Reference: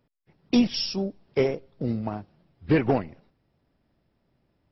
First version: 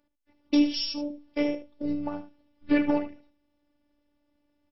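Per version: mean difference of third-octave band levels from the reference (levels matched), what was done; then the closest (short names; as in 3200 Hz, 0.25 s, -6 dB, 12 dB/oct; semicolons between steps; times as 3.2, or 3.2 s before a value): 5.0 dB: notches 50/100/150/200 Hz; robotiser 292 Hz; echo 75 ms -12 dB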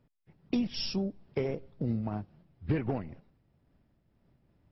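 3.0 dB: tone controls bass +6 dB, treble -6 dB; compressor 6:1, threshold -24 dBFS, peak gain reduction 11.5 dB; noise-modulated level, depth 55%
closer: second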